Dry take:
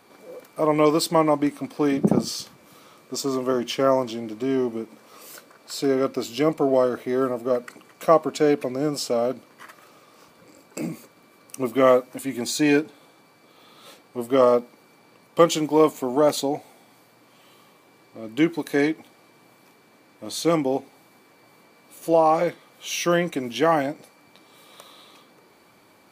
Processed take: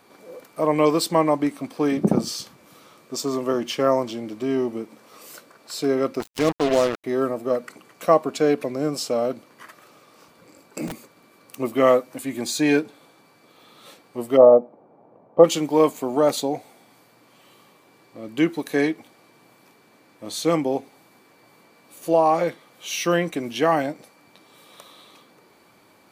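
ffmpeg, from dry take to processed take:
-filter_complex "[0:a]asettb=1/sr,asplit=3[a][b][c];[a]atrim=end=6.204[d];[b]atrim=start=6.2:end=7.04,asetpts=PTS-STARTPTS,afade=t=in:d=0.004:c=qsin,afade=t=out:st=0.836:d=0.004:c=qsin,acrusher=bits=3:mix=0:aa=0.5[e];[c]atrim=start=7.036[f];[d][e]acrossfade=d=0.004:c1=hsin:c2=qsin[g];[g][f]acrossfade=d=0.004:c1=qsin:c2=hsin,asplit=3[h][i][j];[h]afade=t=out:st=10.87:d=0.02[k];[i]aeval=exprs='(mod(20*val(0)+1,2)-1)/20':c=same,afade=t=in:st=10.87:d=0.02,afade=t=out:st=11.57:d=0.02[l];[j]afade=t=in:st=11.57:d=0.02[m];[k][l][m]amix=inputs=3:normalize=0,asplit=3[n][o][p];[n]afade=t=out:st=14.36:d=0.02[q];[o]lowpass=f=700:t=q:w=2.4,afade=t=in:st=14.36:d=0.02,afade=t=out:st=15.43:d=0.02[r];[p]afade=t=in:st=15.43:d=0.02[s];[q][r][s]amix=inputs=3:normalize=0"

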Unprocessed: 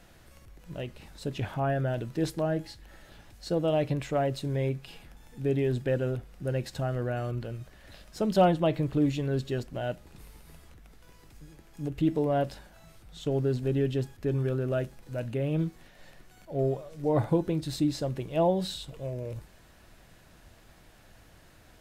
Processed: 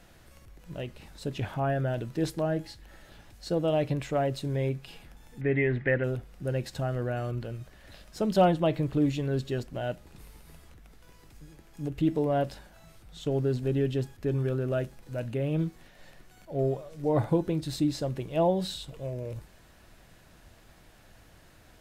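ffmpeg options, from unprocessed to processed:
-filter_complex "[0:a]asettb=1/sr,asplit=3[a][b][c];[a]atrim=end=5.414[d];[b]atrim=start=5.41:end=6.04,asetpts=PTS-STARTPTS,afade=t=in:d=0.004:c=qsin,afade=t=out:st=0.626:d=0.004:c=qsin,lowpass=f=2k:t=q:w=8.9[e];[c]atrim=start=6.036[f];[d][e]acrossfade=d=0.004:c1=hsin:c2=qsin[g];[g][f]acrossfade=d=0.004:c1=qsin:c2=hsin"

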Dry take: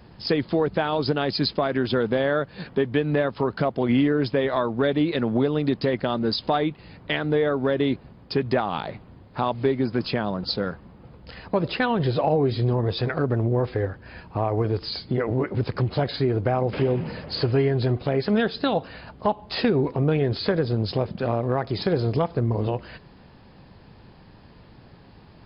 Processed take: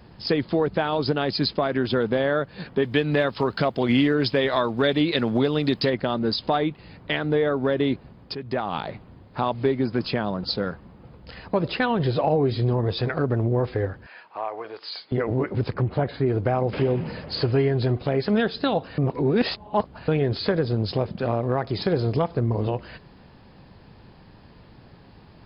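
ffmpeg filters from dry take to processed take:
-filter_complex "[0:a]asettb=1/sr,asplit=3[a][b][c];[a]atrim=end=2.824[d];[b]atrim=start=2.82:end=5.9,asetpts=PTS-STARTPTS,afade=t=in:d=0.004:c=qsin,afade=t=out:st=3.076:d=0.004:c=qsin,highshelf=f=2.6k:g=12[e];[c]atrim=start=5.896[f];[d][e]acrossfade=d=0.004:c1=hsin:c2=qsin[g];[g][f]acrossfade=d=0.004:c1=qsin:c2=hsin,asettb=1/sr,asplit=3[h][i][j];[h]atrim=end=14.064[k];[i]atrim=start=14.06:end=15.12,asetpts=PTS-STARTPTS,afade=t=in:d=0.004:c=qsin,afade=t=out:st=1.056:d=0.004:c=qsin,highpass=770,lowpass=4.2k[l];[j]atrim=start=15.116[m];[k][l]acrossfade=d=0.004:c1=hsin:c2=qsin[n];[n][m]acrossfade=d=0.004:c1=qsin:c2=hsin,asplit=3[o][p][q];[o]afade=t=out:st=15.73:d=0.02[r];[p]lowpass=2.1k,afade=t=in:st=15.73:d=0.02,afade=t=out:st=16.25:d=0.02[s];[q]afade=t=in:st=16.25:d=0.02[t];[r][s][t]amix=inputs=3:normalize=0,asplit=4[u][v][w][x];[u]atrim=end=8.35,asetpts=PTS-STARTPTS,afade=t=out:st=8.346:d=0.004:c=hsin:silence=0.223872[y];[v]atrim=start=8.35:end=18.982,asetpts=PTS-STARTPTS,afade=t=in:d=0.41:silence=0.223872[z];[w]atrim=start=18.978:end=20.082,asetpts=PTS-STARTPTS,areverse[aa];[x]atrim=start=20.078[ab];[y][z]concat=n=2:v=0:a=1[ac];[ac][aa]acrossfade=d=0.004:c1=hsin:c2=hsin[ad];[ad][ab]acrossfade=d=0.004:c1=hsin:c2=hsin"

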